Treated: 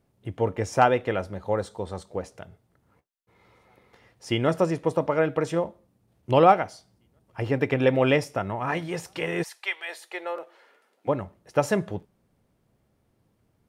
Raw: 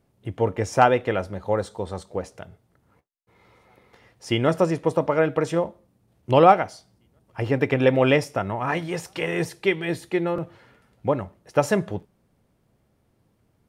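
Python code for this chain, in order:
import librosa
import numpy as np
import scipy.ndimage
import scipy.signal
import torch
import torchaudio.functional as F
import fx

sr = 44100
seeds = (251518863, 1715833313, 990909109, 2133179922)

y = fx.highpass(x, sr, hz=fx.line((9.42, 900.0), (11.07, 300.0)), slope=24, at=(9.42, 11.07), fade=0.02)
y = F.gain(torch.from_numpy(y), -2.5).numpy()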